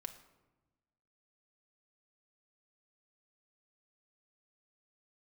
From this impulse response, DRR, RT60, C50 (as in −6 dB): 5.0 dB, 1.1 s, 11.5 dB